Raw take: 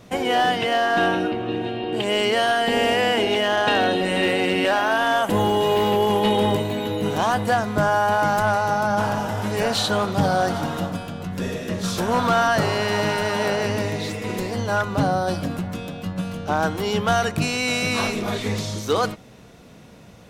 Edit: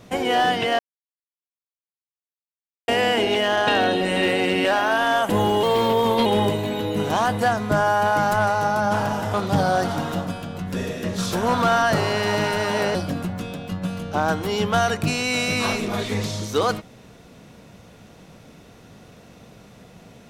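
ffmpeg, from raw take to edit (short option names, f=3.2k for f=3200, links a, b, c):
-filter_complex "[0:a]asplit=7[a][b][c][d][e][f][g];[a]atrim=end=0.79,asetpts=PTS-STARTPTS,afade=t=out:st=0.786:d=0.004:c=hsin[h];[b]atrim=start=0.79:end=2.88,asetpts=PTS-STARTPTS,volume=0[i];[c]atrim=start=2.88:end=5.634,asetpts=PTS-STARTPTS,afade=t=in:d=0.004:c=hsin[j];[d]atrim=start=5.63:end=6.32,asetpts=PTS-STARTPTS,asetrate=48510,aresample=44100[k];[e]atrim=start=6.316:end=9.402[l];[f]atrim=start=9.988:end=13.602[m];[g]atrim=start=15.288[n];[h][i][j]concat=n=3:v=0:a=1[o];[o][k]acrossfade=d=0.004:c1=hsin:c2=hsin[p];[p][l]acrossfade=d=0.004:c1=hsin:c2=hsin[q];[q][m]acrossfade=d=0.004:c1=hsin:c2=hsin[r];[r][n]acrossfade=d=0.004:c1=hsin:c2=hsin"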